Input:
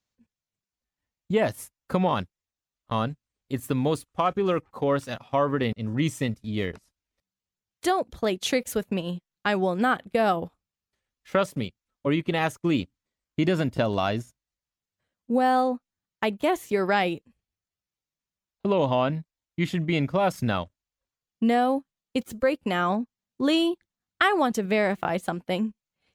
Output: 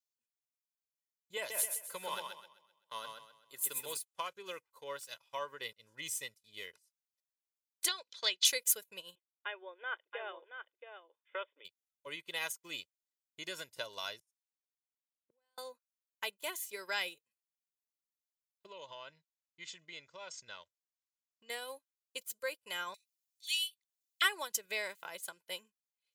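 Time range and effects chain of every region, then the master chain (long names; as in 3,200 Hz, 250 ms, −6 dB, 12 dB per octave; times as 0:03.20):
0:01.37–0:03.97: high-pass filter 140 Hz 24 dB per octave + parametric band 11,000 Hz +2.5 dB 1.4 octaves + repeating echo 129 ms, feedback 47%, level −3.5 dB
0:07.88–0:08.45: low-pass filter 4,500 Hz 24 dB per octave + spectral tilt +4 dB per octave + multiband upward and downward compressor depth 100%
0:09.15–0:11.65: linear-phase brick-wall band-pass 270–3,700 Hz + high-frequency loss of the air 300 metres + single-tap delay 675 ms −5.5 dB
0:14.19–0:15.58: high-shelf EQ 12,000 Hz −5 dB + gate with flip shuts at −28 dBFS, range −34 dB + multiband upward and downward expander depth 70%
0:18.66–0:21.50: Butterworth low-pass 7,700 Hz 72 dB per octave + downward compressor 3 to 1, threshold −25 dBFS
0:22.94–0:24.22: Butterworth high-pass 2,100 Hz 72 dB per octave + one half of a high-frequency compander encoder only
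whole clip: first difference; comb filter 2 ms, depth 67%; expander for the loud parts 1.5 to 1, over −56 dBFS; level +5 dB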